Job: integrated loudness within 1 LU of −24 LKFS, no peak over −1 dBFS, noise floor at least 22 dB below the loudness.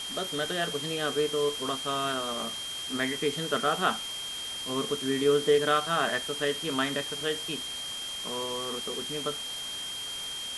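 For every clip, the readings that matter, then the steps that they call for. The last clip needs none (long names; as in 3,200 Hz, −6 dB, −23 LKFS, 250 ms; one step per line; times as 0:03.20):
interfering tone 3,200 Hz; level of the tone −35 dBFS; background noise floor −37 dBFS; target noise floor −52 dBFS; integrated loudness −29.5 LKFS; sample peak −11.5 dBFS; target loudness −24.0 LKFS
→ notch filter 3,200 Hz, Q 30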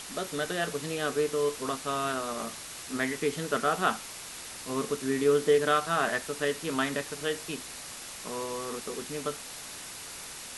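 interfering tone none found; background noise floor −43 dBFS; target noise floor −53 dBFS
→ broadband denoise 10 dB, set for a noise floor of −43 dBFS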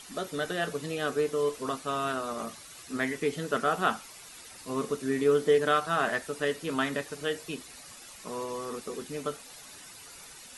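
background noise floor −49 dBFS; target noise floor −53 dBFS
→ broadband denoise 6 dB, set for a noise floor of −49 dBFS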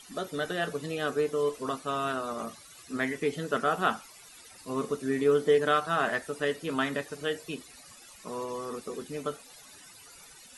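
background noise floor −52 dBFS; target noise floor −53 dBFS
→ broadband denoise 6 dB, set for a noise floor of −52 dBFS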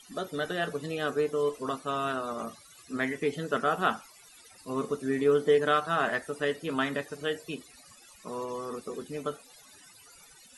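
background noise floor −55 dBFS; integrated loudness −30.5 LKFS; sample peak −12.0 dBFS; target loudness −24.0 LKFS
→ level +6.5 dB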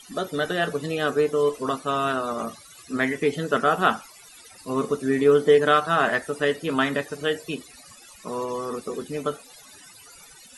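integrated loudness −24.0 LKFS; sample peak −5.5 dBFS; background noise floor −49 dBFS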